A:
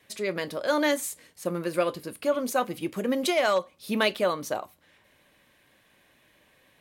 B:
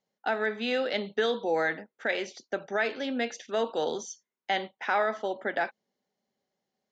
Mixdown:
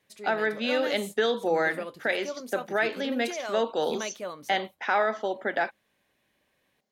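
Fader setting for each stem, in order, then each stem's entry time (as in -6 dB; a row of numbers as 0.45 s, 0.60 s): -11.0 dB, +2.0 dB; 0.00 s, 0.00 s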